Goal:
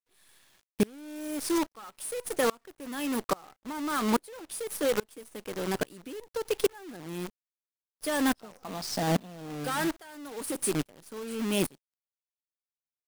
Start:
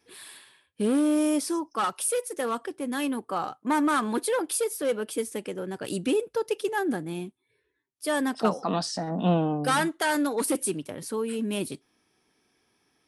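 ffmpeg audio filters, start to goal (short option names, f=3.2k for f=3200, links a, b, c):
-filter_complex "[0:a]asplit=2[a][b];[b]acrusher=bits=4:mode=log:mix=0:aa=0.000001,volume=-7dB[c];[a][c]amix=inputs=2:normalize=0,acompressor=threshold=-23dB:ratio=16,acrusher=bits=6:dc=4:mix=0:aa=0.000001,aeval=exprs='val(0)*pow(10,-29*if(lt(mod(-1.2*n/s,1),2*abs(-1.2)/1000),1-mod(-1.2*n/s,1)/(2*abs(-1.2)/1000),(mod(-1.2*n/s,1)-2*abs(-1.2)/1000)/(1-2*abs(-1.2)/1000))/20)':c=same,volume=4.5dB"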